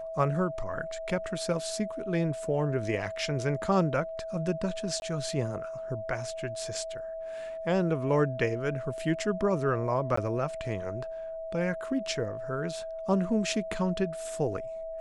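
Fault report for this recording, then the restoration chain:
whistle 650 Hz −35 dBFS
0:05.00–0:05.02: drop-out 21 ms
0:10.16–0:10.17: drop-out 14 ms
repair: notch filter 650 Hz, Q 30
repair the gap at 0:05.00, 21 ms
repair the gap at 0:10.16, 14 ms

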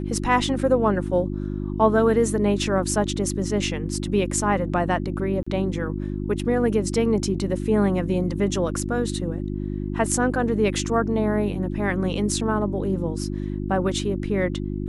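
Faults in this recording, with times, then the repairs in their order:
mains hum 50 Hz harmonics 7 −28 dBFS
0:05.43–0:05.46: drop-out 35 ms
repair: hum removal 50 Hz, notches 7
repair the gap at 0:05.43, 35 ms

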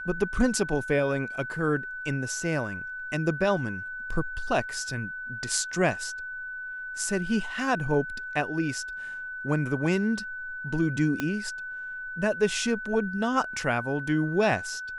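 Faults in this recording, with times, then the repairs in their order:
whistle 1,500 Hz −34 dBFS
0:11.20: click −14 dBFS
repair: click removal
notch filter 1,500 Hz, Q 30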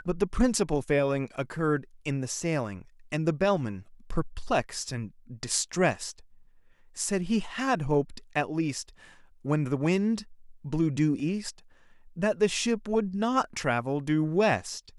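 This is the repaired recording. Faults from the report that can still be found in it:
0:11.20: click

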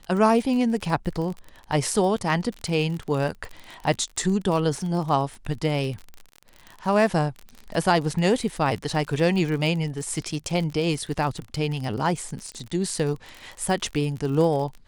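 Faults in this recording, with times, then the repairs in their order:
surface crackle 41 per second −30 dBFS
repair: click removal

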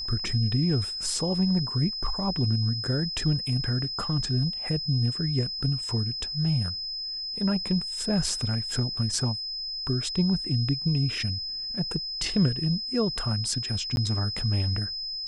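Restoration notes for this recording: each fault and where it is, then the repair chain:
whistle 5,100 Hz −31 dBFS
0:13.96–0:13.97: drop-out 11 ms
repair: notch filter 5,100 Hz, Q 30
repair the gap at 0:13.96, 11 ms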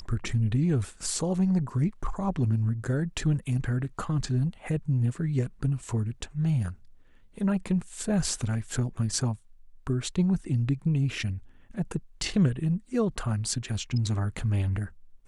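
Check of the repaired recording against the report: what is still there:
none of them is left

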